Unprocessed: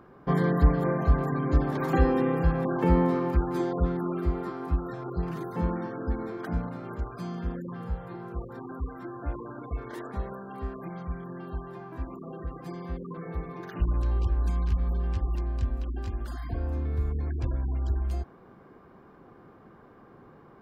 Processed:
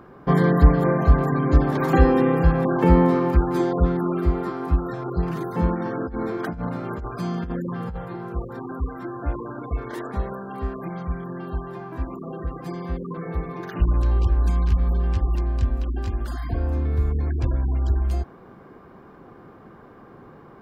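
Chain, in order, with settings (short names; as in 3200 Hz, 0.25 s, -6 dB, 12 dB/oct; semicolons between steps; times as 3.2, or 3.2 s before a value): 5.75–8.05 negative-ratio compressor -34 dBFS, ratio -1; gain +6.5 dB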